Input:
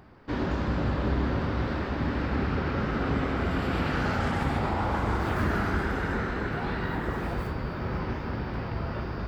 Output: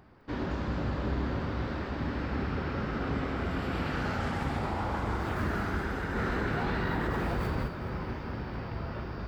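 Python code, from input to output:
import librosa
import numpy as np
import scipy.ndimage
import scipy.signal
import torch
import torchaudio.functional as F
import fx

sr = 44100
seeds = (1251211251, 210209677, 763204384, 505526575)

p1 = x + fx.echo_wet_highpass(x, sr, ms=210, feedback_pct=61, hz=4300.0, wet_db=-6, dry=0)
p2 = fx.env_flatten(p1, sr, amount_pct=70, at=(6.15, 7.66), fade=0.02)
y = p2 * librosa.db_to_amplitude(-4.5)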